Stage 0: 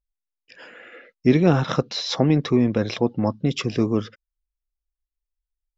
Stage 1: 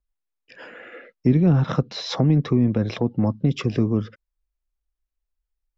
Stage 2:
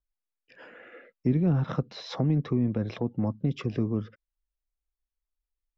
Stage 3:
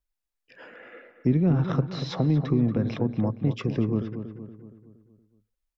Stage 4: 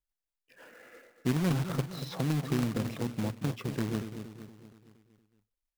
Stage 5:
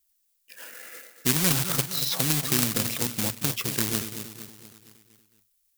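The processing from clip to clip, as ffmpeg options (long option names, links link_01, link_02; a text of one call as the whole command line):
ffmpeg -i in.wav -filter_complex "[0:a]highshelf=frequency=2900:gain=-10,acrossover=split=220[link_01][link_02];[link_02]acompressor=threshold=-29dB:ratio=6[link_03];[link_01][link_03]amix=inputs=2:normalize=0,volume=4.5dB" out.wav
ffmpeg -i in.wav -af "highshelf=frequency=4900:gain=-9,volume=-7dB" out.wav
ffmpeg -i in.wav -filter_complex "[0:a]asplit=2[link_01][link_02];[link_02]adelay=234,lowpass=frequency=2000:poles=1,volume=-9dB,asplit=2[link_03][link_04];[link_04]adelay=234,lowpass=frequency=2000:poles=1,volume=0.51,asplit=2[link_05][link_06];[link_06]adelay=234,lowpass=frequency=2000:poles=1,volume=0.51,asplit=2[link_07][link_08];[link_08]adelay=234,lowpass=frequency=2000:poles=1,volume=0.51,asplit=2[link_09][link_10];[link_10]adelay=234,lowpass=frequency=2000:poles=1,volume=0.51,asplit=2[link_11][link_12];[link_12]adelay=234,lowpass=frequency=2000:poles=1,volume=0.51[link_13];[link_01][link_03][link_05][link_07][link_09][link_11][link_13]amix=inputs=7:normalize=0,volume=2.5dB" out.wav
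ffmpeg -i in.wav -af "acrusher=bits=2:mode=log:mix=0:aa=0.000001,volume=-7.5dB" out.wav
ffmpeg -i in.wav -af "crystalizer=i=10:c=0" out.wav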